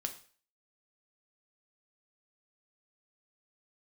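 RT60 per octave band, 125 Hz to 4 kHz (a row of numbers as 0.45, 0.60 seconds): 0.40, 0.40, 0.45, 0.45, 0.45, 0.45 seconds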